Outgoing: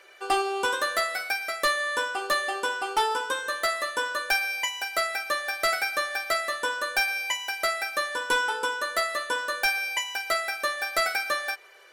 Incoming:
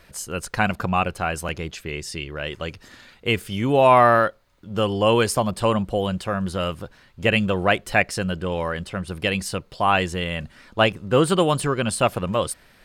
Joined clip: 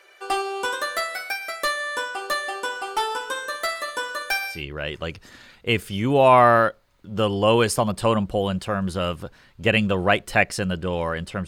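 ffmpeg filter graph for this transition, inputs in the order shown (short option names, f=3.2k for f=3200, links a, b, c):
-filter_complex "[0:a]asplit=3[a][b][c];[a]afade=t=out:st=2.71:d=0.02[d];[b]aecho=1:1:61|122|183|244|305|366:0.178|0.105|0.0619|0.0365|0.0215|0.0127,afade=t=in:st=2.71:d=0.02,afade=t=out:st=4.64:d=0.02[e];[c]afade=t=in:st=4.64:d=0.02[f];[d][e][f]amix=inputs=3:normalize=0,apad=whole_dur=11.47,atrim=end=11.47,atrim=end=4.64,asetpts=PTS-STARTPTS[g];[1:a]atrim=start=2.05:end=9.06,asetpts=PTS-STARTPTS[h];[g][h]acrossfade=d=0.18:c1=tri:c2=tri"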